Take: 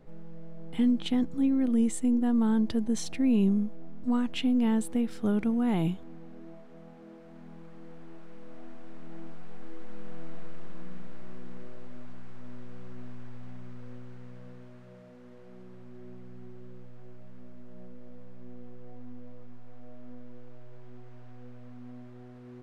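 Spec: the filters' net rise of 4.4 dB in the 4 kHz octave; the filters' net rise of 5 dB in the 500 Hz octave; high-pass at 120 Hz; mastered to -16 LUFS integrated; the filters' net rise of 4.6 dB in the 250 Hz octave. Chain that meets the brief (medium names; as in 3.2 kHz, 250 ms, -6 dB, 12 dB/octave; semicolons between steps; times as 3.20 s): high-pass 120 Hz; peaking EQ 250 Hz +4.5 dB; peaking EQ 500 Hz +4.5 dB; peaking EQ 4 kHz +6 dB; trim +7 dB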